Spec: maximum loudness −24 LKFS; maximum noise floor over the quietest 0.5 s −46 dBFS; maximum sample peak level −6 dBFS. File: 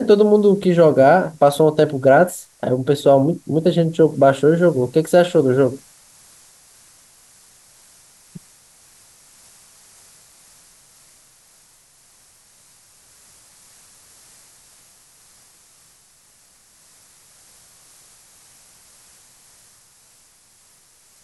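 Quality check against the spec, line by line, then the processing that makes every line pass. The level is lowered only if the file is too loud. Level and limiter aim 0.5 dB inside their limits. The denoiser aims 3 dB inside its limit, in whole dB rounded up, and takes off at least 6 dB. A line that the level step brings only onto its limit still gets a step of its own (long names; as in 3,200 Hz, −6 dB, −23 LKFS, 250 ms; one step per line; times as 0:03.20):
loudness −15.5 LKFS: out of spec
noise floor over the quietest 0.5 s −53 dBFS: in spec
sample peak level −3.0 dBFS: out of spec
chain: level −9 dB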